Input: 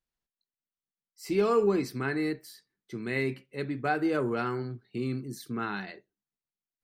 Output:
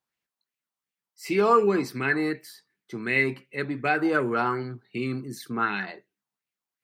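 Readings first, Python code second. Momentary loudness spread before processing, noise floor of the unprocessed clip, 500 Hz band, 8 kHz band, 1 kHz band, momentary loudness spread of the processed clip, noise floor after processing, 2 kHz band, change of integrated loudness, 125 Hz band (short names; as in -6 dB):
14 LU, under -85 dBFS, +3.0 dB, +2.5 dB, +7.5 dB, 14 LU, under -85 dBFS, +9.0 dB, +5.0 dB, +1.0 dB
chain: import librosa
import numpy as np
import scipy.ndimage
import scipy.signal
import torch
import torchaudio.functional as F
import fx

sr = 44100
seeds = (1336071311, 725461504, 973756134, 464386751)

y = scipy.signal.sosfilt(scipy.signal.butter(2, 110.0, 'highpass', fs=sr, output='sos'), x)
y = fx.bell_lfo(y, sr, hz=2.7, low_hz=840.0, high_hz=2600.0, db=11)
y = y * 10.0 ** (2.5 / 20.0)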